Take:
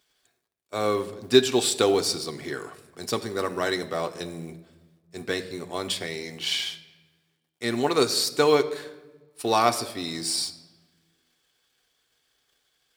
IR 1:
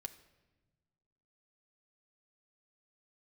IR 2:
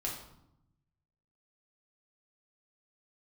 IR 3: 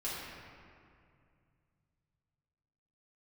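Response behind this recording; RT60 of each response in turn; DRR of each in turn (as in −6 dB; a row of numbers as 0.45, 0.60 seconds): 1; 1.2, 0.80, 2.3 seconds; 6.0, −3.5, −9.0 decibels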